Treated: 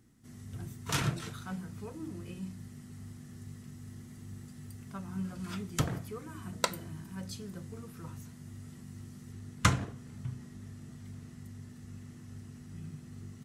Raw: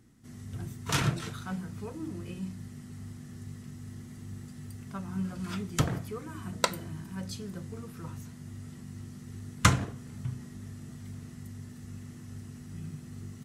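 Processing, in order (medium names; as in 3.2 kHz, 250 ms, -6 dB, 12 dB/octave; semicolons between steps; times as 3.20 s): treble shelf 9 kHz +3.5 dB, from 9.32 s -3.5 dB; trim -3.5 dB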